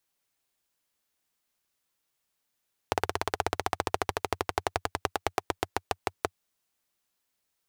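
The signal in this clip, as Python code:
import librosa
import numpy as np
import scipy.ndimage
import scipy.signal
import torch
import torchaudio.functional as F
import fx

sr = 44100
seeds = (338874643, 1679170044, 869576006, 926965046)

y = fx.engine_single_rev(sr, seeds[0], length_s=3.42, rpm=2100, resonances_hz=(92.0, 420.0, 730.0), end_rpm=600)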